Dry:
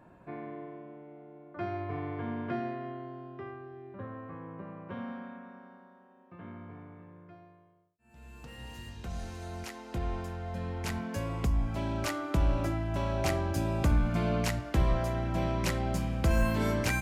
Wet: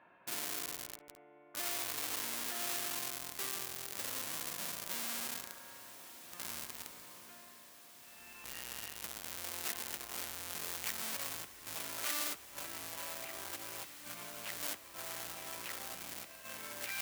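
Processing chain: inverse Chebyshev low-pass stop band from 7.1 kHz, stop band 50 dB; in parallel at -4 dB: Schmitt trigger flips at -41.5 dBFS; on the sum: compressor with a negative ratio -31 dBFS, ratio -0.5; hard clipper -34.5 dBFS, distortion -9 dB; differentiator; on a send: echo that smears into a reverb 1820 ms, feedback 55%, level -13 dB; on the sum: trim +11 dB

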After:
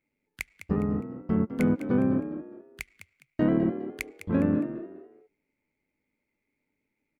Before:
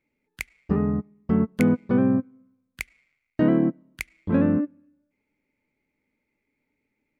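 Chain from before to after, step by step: AM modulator 100 Hz, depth 30%; on a send: frequency-shifting echo 205 ms, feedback 31%, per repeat +47 Hz, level -11 dB; on the sum: trim -2 dB

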